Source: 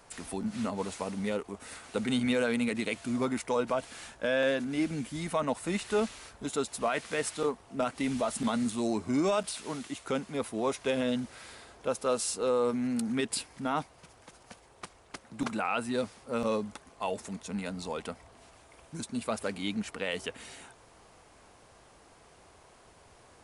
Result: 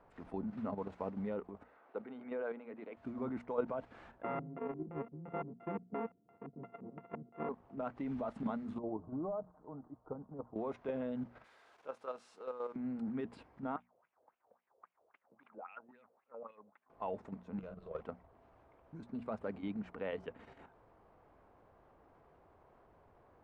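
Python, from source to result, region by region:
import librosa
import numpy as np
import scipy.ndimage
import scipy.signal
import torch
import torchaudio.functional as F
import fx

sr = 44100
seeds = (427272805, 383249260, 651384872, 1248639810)

y = fx.chain(x, sr, fx.highpass(hz=430.0, slope=12),
    fx.spacing_loss(db_at_10k=27), at=(1.63, 2.97))
y = fx.chain(y, sr, fx.sample_sort(block=64),
    fx.filter_lfo_lowpass(shape='square', hz=2.9, low_hz=210.0, high_hz=1700.0, q=1.1),
    fx.cabinet(low_hz=150.0, low_slope=24, high_hz=3200.0, hz=(250.0, 450.0, 640.0, 940.0, 1500.0, 2600.0), db=(-3, 5, -10, 4, -8, 5)), at=(4.22, 7.49))
y = fx.chain(y, sr, fx.cheby2_lowpass(hz=2600.0, order=4, stop_db=50),
    fx.peak_eq(hz=310.0, db=-6.5, octaves=2.8),
    fx.comb(ms=6.5, depth=0.41), at=(8.78, 10.56))
y = fx.chain(y, sr, fx.crossing_spikes(level_db=-34.0),
    fx.highpass(hz=1500.0, slope=6),
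    fx.doubler(ms=25.0, db=-14.0), at=(11.44, 12.76))
y = fx.chain(y, sr, fx.wah_lfo(hz=3.7, low_hz=480.0, high_hz=2900.0, q=4.3),
    fx.air_absorb(metres=180.0), at=(13.76, 16.9))
y = fx.chain(y, sr, fx.fixed_phaser(hz=1300.0, stages=8),
    fx.doubler(ms=39.0, db=-11.5),
    fx.running_max(window=5), at=(17.59, 18.01))
y = scipy.signal.sosfilt(scipy.signal.butter(2, 1200.0, 'lowpass', fs=sr, output='sos'), y)
y = fx.level_steps(y, sr, step_db=9)
y = fx.hum_notches(y, sr, base_hz=60, count=4)
y = y * 10.0 ** (-2.0 / 20.0)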